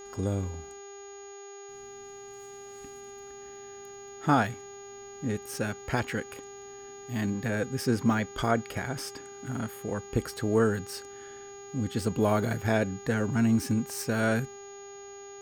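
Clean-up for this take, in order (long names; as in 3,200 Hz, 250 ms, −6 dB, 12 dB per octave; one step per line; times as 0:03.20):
hum removal 400.1 Hz, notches 17
notch filter 6,700 Hz, Q 30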